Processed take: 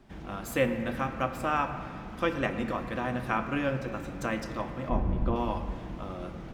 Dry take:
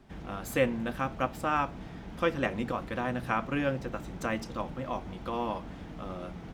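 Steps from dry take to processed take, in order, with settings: 4.89–5.36 tilt -4 dB/oct; on a send: reverb RT60 2.7 s, pre-delay 3 ms, DRR 7 dB

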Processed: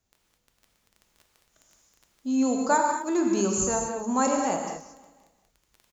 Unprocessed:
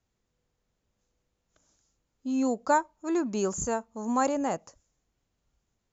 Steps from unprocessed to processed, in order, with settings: high shelf 4900 Hz +8.5 dB; crackle 16/s -39 dBFS; feedback echo 0.18 s, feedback 55%, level -21 dB; non-linear reverb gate 0.26 s flat, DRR 1 dB

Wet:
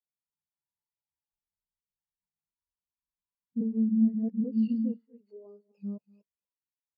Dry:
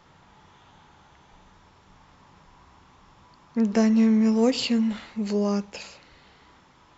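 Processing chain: reverse delay 0.26 s, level -3 dB; compressor 6:1, threshold -24 dBFS, peak gain reduction 10 dB; 4.97–5.78 HPF 460 Hz 12 dB/oct; echo 0.24 s -10 dB; 3.61–4.44 reverse; spectral expander 2.5:1

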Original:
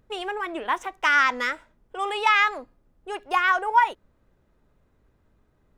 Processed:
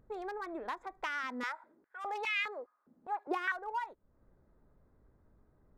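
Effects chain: Wiener smoothing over 15 samples; compressor 3:1, threshold -38 dBFS, peak gain reduction 18 dB; 1.23–3.52 stepped high-pass 4.9 Hz 230–2400 Hz; gain -2 dB

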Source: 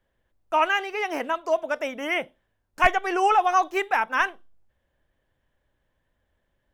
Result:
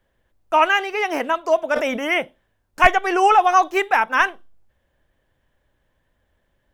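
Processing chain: 1.71–2.14 sustainer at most 49 dB/s; gain +5.5 dB

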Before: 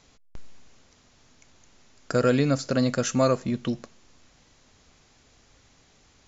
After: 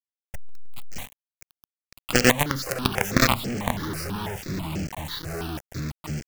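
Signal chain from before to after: in parallel at -3 dB: compressor 10:1, threshold -36 dBFS, peak gain reduction 19 dB; on the sum: harmoniser +12 st -8 dB; echoes that change speed 0.132 s, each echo -4 st, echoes 2, each echo -6 dB; companded quantiser 2-bit; step phaser 6.1 Hz 930–3700 Hz; gain -1.5 dB

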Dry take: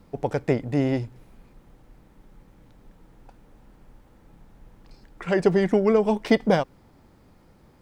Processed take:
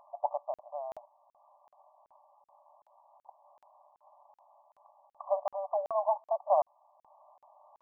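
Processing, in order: upward compressor, threshold -39 dBFS; brick-wall FIR band-pass 570–1200 Hz; crackling interface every 0.38 s, samples 2048, zero, from 0.54

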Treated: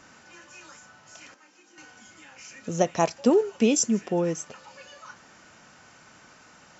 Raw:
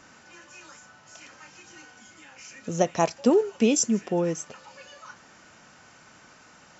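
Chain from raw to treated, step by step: 1.34–1.78 ladder high-pass 230 Hz, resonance 45%

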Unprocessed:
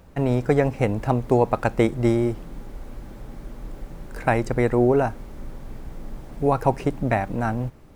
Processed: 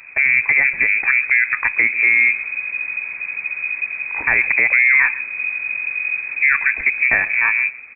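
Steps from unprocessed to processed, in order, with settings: dynamic EQ 1700 Hz, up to -4 dB, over -38 dBFS, Q 1.2; limiter -13.5 dBFS, peak gain reduction 8 dB; echo 0.135 s -18.5 dB; inverted band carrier 2500 Hz; gain +7.5 dB

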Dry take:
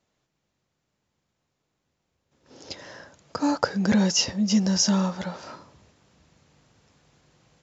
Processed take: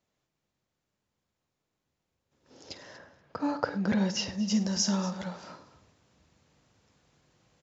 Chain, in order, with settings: 2.97–4.31 LPF 2500 Hz -> 4700 Hz 12 dB/oct; tapped delay 50/102/237 ms -14/-19/-17 dB; gain -6 dB

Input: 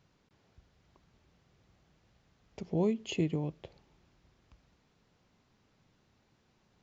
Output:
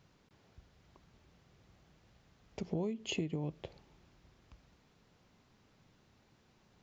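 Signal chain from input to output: compressor 10:1, threshold -35 dBFS, peak gain reduction 11 dB; gain +2.5 dB

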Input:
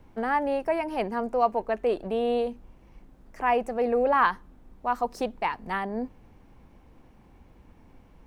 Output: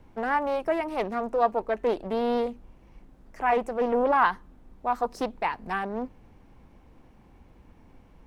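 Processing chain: Doppler distortion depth 0.34 ms

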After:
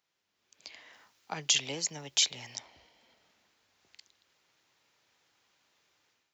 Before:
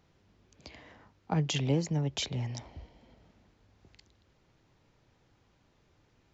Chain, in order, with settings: differentiator; AGC gain up to 11.5 dB; high shelf 4000 Hz -10 dB, from 0.93 s -2.5 dB, from 2.55 s -11 dB; gain +3.5 dB

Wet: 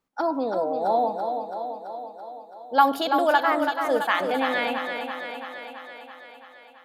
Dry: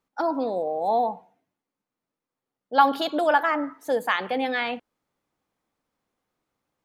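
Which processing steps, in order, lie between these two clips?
1.07–2.99 resonant high shelf 5400 Hz +7.5 dB, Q 1.5; thinning echo 0.333 s, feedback 67%, high-pass 160 Hz, level -6 dB

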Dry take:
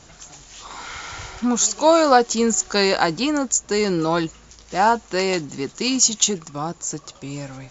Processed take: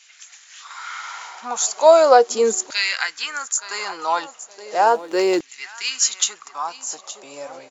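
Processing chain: feedback echo 0.87 s, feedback 18%, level -15 dB; 4.85–5.4 backlash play -38.5 dBFS; LFO high-pass saw down 0.37 Hz 340–2400 Hz; gain -2.5 dB

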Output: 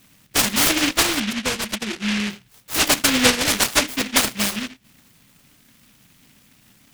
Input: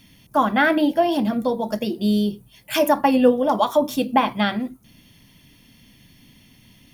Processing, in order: 1.2–2.3 spectral gate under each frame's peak -10 dB strong; low shelf 140 Hz -10 dB; noise-modulated delay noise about 2400 Hz, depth 0.46 ms

